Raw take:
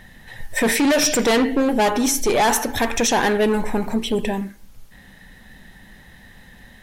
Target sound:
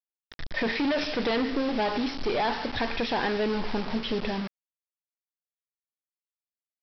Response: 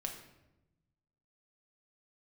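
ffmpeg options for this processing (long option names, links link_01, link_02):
-af "acompressor=threshold=-18dB:ratio=6,aresample=11025,acrusher=bits=4:mix=0:aa=0.000001,aresample=44100,volume=-6dB"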